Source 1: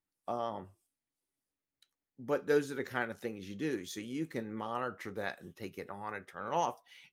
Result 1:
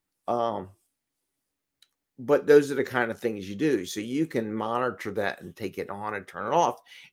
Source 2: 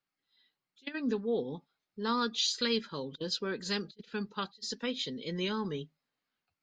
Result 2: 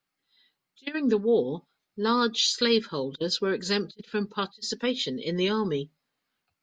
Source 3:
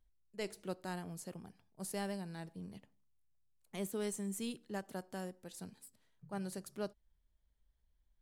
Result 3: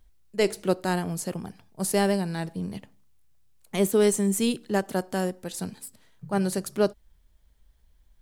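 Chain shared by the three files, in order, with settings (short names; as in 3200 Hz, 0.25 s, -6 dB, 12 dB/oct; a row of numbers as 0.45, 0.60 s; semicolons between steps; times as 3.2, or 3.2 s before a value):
dynamic EQ 410 Hz, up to +4 dB, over -45 dBFS, Q 1.4; match loudness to -27 LUFS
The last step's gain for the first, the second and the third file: +8.5, +6.0, +15.5 dB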